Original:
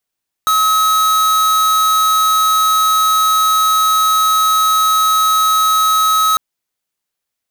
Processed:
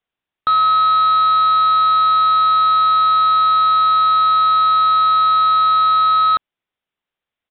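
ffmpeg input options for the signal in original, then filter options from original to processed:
-f lavfi -i "aevalsrc='0.237*(2*lt(mod(1280*t,1),0.5)-1)':d=5.9:s=44100"
-af "aresample=8000,aresample=44100"

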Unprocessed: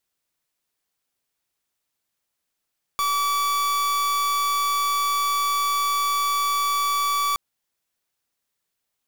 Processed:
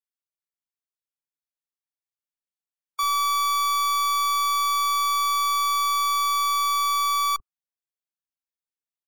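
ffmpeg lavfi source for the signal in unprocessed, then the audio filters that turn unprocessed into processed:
-f lavfi -i "aevalsrc='0.075*(2*lt(mod(1150*t,1),0.43)-1)':d=4.37:s=44100"
-filter_complex "[0:a]afftdn=nr=21:nf=-33,acrossover=split=420[a][b];[a]adelay=40[c];[c][b]amix=inputs=2:normalize=0"

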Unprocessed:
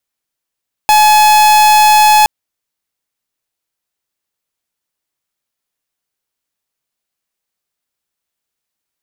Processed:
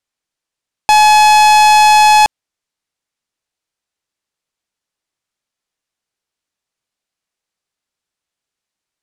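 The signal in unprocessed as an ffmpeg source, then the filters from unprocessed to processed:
-f lavfi -i "aevalsrc='0.447*(2*lt(mod(850*t,1),0.45)-1)':d=1.37:s=44100"
-af "lowpass=8.4k"

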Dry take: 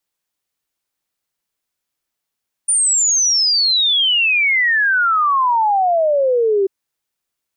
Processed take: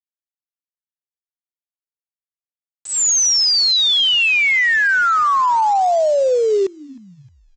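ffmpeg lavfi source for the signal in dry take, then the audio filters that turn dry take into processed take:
-f lavfi -i "aevalsrc='0.251*clip(min(t,3.99-t)/0.01,0,1)*sin(2*PI*9400*3.99/log(380/9400)*(exp(log(380/9400)*t/3.99)-1))':d=3.99:s=44100"
-filter_complex "[0:a]aresample=16000,aeval=exprs='val(0)*gte(abs(val(0)),0.0447)':c=same,aresample=44100,asplit=4[a][b][c][d];[b]adelay=310,afreqshift=-130,volume=-22.5dB[e];[c]adelay=620,afreqshift=-260,volume=-29.4dB[f];[d]adelay=930,afreqshift=-390,volume=-36.4dB[g];[a][e][f][g]amix=inputs=4:normalize=0"

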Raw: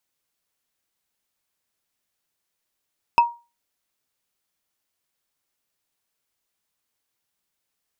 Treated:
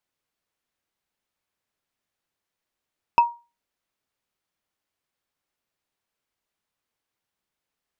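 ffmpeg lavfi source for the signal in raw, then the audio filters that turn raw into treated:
-f lavfi -i "aevalsrc='0.398*pow(10,-3*t/0.29)*sin(2*PI*945*t)+0.141*pow(10,-3*t/0.086)*sin(2*PI*2605.4*t)+0.0501*pow(10,-3*t/0.038)*sin(2*PI*5106.8*t)+0.0178*pow(10,-3*t/0.021)*sin(2*PI*8441.7*t)+0.00631*pow(10,-3*t/0.013)*sin(2*PI*12606.3*t)':d=0.45:s=44100"
-af "highshelf=f=4.5k:g=-10.5"

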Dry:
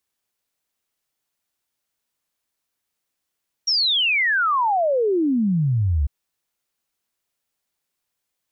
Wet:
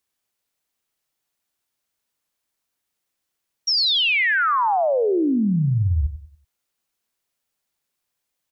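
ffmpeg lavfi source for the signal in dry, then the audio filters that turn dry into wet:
-f lavfi -i "aevalsrc='0.15*clip(min(t,2.4-t)/0.01,0,1)*sin(2*PI*5700*2.4/log(66/5700)*(exp(log(66/5700)*t/2.4)-1))':d=2.4:s=44100"
-af "aecho=1:1:95|190|285|380:0.251|0.0879|0.0308|0.0108"

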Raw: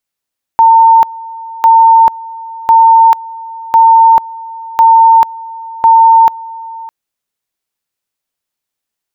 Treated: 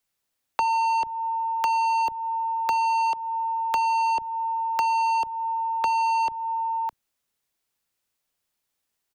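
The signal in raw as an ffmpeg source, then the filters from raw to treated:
-f lavfi -i "aevalsrc='pow(10,(-1.5-21*gte(mod(t,1.05),0.44))/20)*sin(2*PI*906*t)':d=6.3:s=44100"
-filter_complex "[0:a]acrossover=split=160|310|590[a][b][c][d];[a]asplit=2[e][f];[f]adelay=32,volume=-2.5dB[g];[e][g]amix=inputs=2:normalize=0[h];[d]asoftclip=type=tanh:threshold=-15dB[i];[h][b][c][i]amix=inputs=4:normalize=0,acrossover=split=400|1100[j][k][l];[j]acompressor=threshold=-49dB:ratio=4[m];[k]acompressor=threshold=-28dB:ratio=4[n];[l]acompressor=threshold=-32dB:ratio=4[o];[m][n][o]amix=inputs=3:normalize=0"

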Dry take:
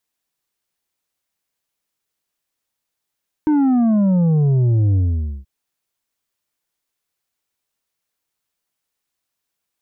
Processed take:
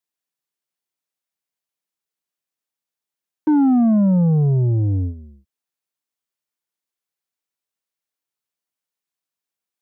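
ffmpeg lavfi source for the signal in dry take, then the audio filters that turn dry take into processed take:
-f lavfi -i "aevalsrc='0.224*clip((1.98-t)/0.5,0,1)*tanh(2*sin(2*PI*310*1.98/log(65/310)*(exp(log(65/310)*t/1.98)-1)))/tanh(2)':d=1.98:s=44100"
-filter_complex "[0:a]highpass=120,agate=range=-11dB:threshold=-23dB:ratio=16:detection=peak,asplit=2[a][b];[b]asoftclip=type=tanh:threshold=-23.5dB,volume=-10dB[c];[a][c]amix=inputs=2:normalize=0"

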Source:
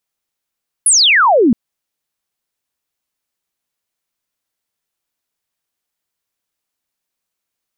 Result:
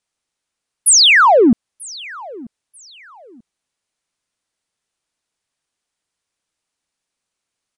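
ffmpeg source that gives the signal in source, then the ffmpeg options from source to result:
-f lavfi -i "aevalsrc='0.447*clip(t/0.002,0,1)*clip((0.67-t)/0.002,0,1)*sin(2*PI*11000*0.67/log(210/11000)*(exp(log(210/11000)*t/0.67)-1))':d=0.67:s=44100"
-filter_complex "[0:a]asplit=2[a][b];[b]asoftclip=type=tanh:threshold=-18dB,volume=-10dB[c];[a][c]amix=inputs=2:normalize=0,aecho=1:1:938|1876:0.0794|0.023,aresample=22050,aresample=44100"

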